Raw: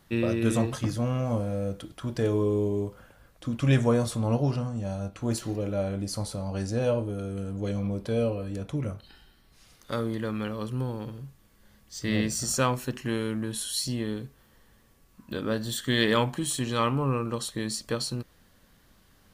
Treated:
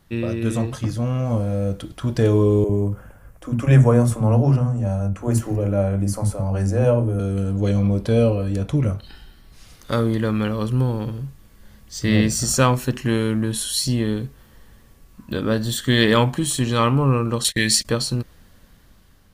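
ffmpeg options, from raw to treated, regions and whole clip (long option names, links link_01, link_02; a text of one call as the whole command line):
ffmpeg -i in.wav -filter_complex "[0:a]asettb=1/sr,asplit=3[link_01][link_02][link_03];[link_01]atrim=end=2.644[link_04];[link_02]atrim=start=2.64:end=7.2,asetpts=PTS-STARTPTS,afade=type=in:duration=0.004:curve=qsin,afade=type=out:start_time=4.556:duration=0.004:curve=qsin,equalizer=frequency=4000:width_type=o:width=0.92:gain=-15,acrossover=split=280[link_05][link_06];[link_05]adelay=50[link_07];[link_07][link_06]amix=inputs=2:normalize=0,atrim=end_sample=201096[link_08];[link_03]atrim=start=7.196[link_09];[link_04][link_08]acrossfade=duration=0.004:curve1=hsin:curve2=qsin[link_10];[link_10][link_09]acrossfade=duration=0.004:curve1=qsin:curve2=hsin,asettb=1/sr,asplit=3[link_11][link_12][link_13];[link_11]atrim=end=17.444[link_14];[link_12]atrim=start=17.44:end=17.85,asetpts=PTS-STARTPTS,afade=type=in:duration=0.004:curve=qsin,afade=type=out:start_time=0.406:duration=0.004:curve=qsin,agate=range=-24dB:threshold=-43dB:ratio=16:release=100:detection=peak,highshelf=frequency=1500:width_type=q:width=3:gain=8.5[link_15];[link_13]atrim=start=17.846[link_16];[link_14][link_15]acrossfade=duration=0.004:curve1=hsin:curve2=qsin[link_17];[link_17][link_16]acrossfade=duration=0.004:curve1=qsin:curve2=hsin,lowshelf=frequency=130:gain=7.5,dynaudnorm=framelen=580:gausssize=5:maxgain=8dB" out.wav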